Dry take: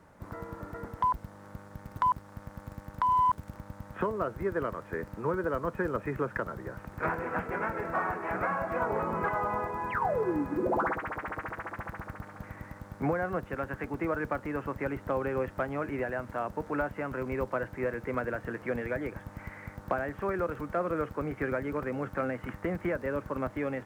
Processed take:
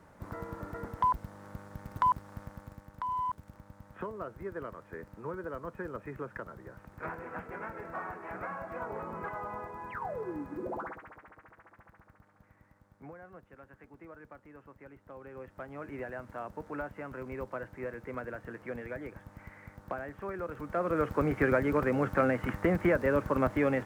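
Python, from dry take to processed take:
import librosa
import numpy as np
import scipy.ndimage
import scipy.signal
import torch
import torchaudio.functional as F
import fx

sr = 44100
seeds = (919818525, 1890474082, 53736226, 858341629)

y = fx.gain(x, sr, db=fx.line((2.4, 0.0), (2.9, -8.5), (10.69, -8.5), (11.35, -19.0), (15.06, -19.0), (15.98, -7.0), (20.41, -7.0), (21.18, 5.0)))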